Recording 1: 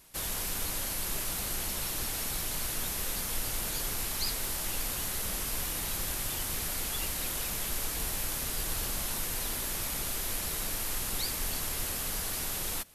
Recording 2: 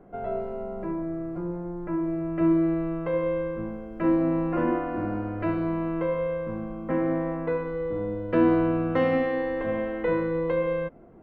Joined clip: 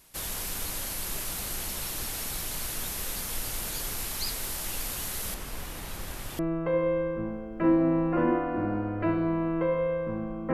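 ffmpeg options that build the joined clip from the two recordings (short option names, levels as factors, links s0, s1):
-filter_complex "[0:a]asettb=1/sr,asplit=3[s0][s1][s2];[s0]atrim=end=5.344[s3];[s1]atrim=start=5.34:end=6.39,asetpts=PTS-STARTPTS,afade=t=in:d=0.004:c=qsin,afade=t=out:st=1.046:d=0.004:c=qsin,highshelf=f=3300:g=-10[s4];[s2]atrim=start=6.386[s5];[s3][s4]acrossfade=d=0.004:c1=hsin:c2=qsin[s6];[s6][s5]acrossfade=d=0.004:c1=qsin:c2=hsin,apad=whole_dur=10.53,atrim=end=10.53,atrim=end=6.392[s7];[1:a]atrim=start=2.788:end=6.93[s8];[s7][s8]acrossfade=d=0.004:c1=hsin:c2=hsin"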